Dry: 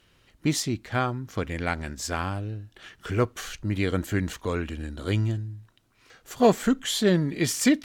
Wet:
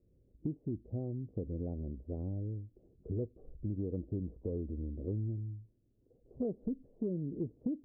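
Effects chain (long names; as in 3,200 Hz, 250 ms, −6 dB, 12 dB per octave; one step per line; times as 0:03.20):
Butterworth low-pass 520 Hz 36 dB per octave
parametric band 60 Hz +9.5 dB 0.26 octaves
downward compressor 6 to 1, threshold −28 dBFS, peak gain reduction 12 dB
level −5 dB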